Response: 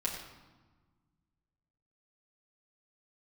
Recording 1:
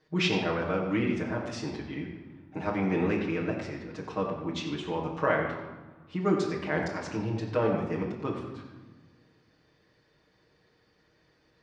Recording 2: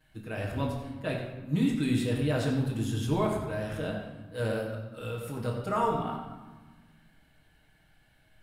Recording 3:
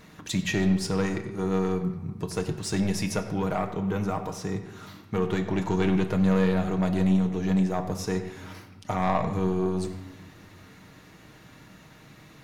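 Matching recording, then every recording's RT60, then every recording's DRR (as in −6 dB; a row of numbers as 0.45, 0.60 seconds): 1; 1.3, 1.3, 1.4 seconds; −5.0, −9.5, 4.5 decibels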